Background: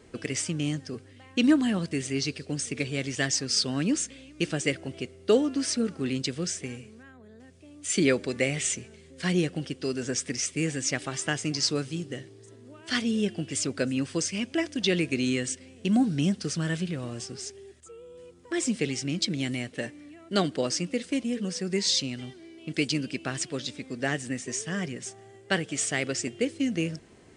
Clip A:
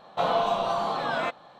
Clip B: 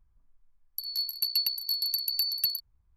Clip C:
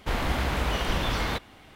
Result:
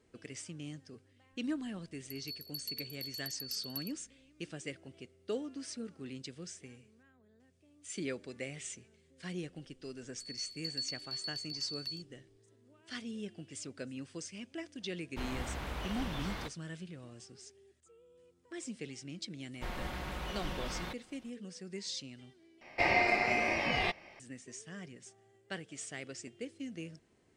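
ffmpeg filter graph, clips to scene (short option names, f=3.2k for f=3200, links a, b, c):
-filter_complex "[2:a]asplit=2[a][b];[3:a]asplit=2[c][d];[0:a]volume=-15.5dB[e];[b]lowpass=f=6.1k:w=0.5412,lowpass=f=6.1k:w=1.3066[f];[c]agate=range=-33dB:threshold=-44dB:ratio=3:release=100:detection=peak[g];[d]aecho=1:1:5.5:0.47[h];[1:a]aeval=exprs='val(0)*sin(2*PI*1400*n/s)':c=same[i];[e]asplit=2[j][k];[j]atrim=end=22.614[l];[i]atrim=end=1.59,asetpts=PTS-STARTPTS,volume=-1dB[m];[k]atrim=start=24.196[n];[a]atrim=end=2.96,asetpts=PTS-STARTPTS,volume=-14.5dB,afade=t=in:d=0.004:c=hsin,afade=t=out:st=2.956:d=0.004:c=hsin,adelay=1320[o];[f]atrim=end=2.96,asetpts=PTS-STARTPTS,volume=-10.5dB,afade=t=in:d=0.004:c=hsin,afade=t=out:st=2.956:d=0.004:c=hsin,adelay=9420[p];[g]atrim=end=1.75,asetpts=PTS-STARTPTS,volume=-13dB,afade=t=in:d=0.004:c=hsin,afade=t=out:st=1.746:d=0.004:c=hsin,adelay=15100[q];[h]atrim=end=1.75,asetpts=PTS-STARTPTS,volume=-13.5dB,afade=t=in:d=0.004:c=hsin,afade=t=out:st=1.746:d=0.004:c=hsin,adelay=19550[r];[l][m]acrossfade=d=0.004:c1=hsin:c2=hsin[s];[s][n]acrossfade=d=0.004:c1=hsin:c2=hsin[t];[t][o][p][q][r]amix=inputs=5:normalize=0"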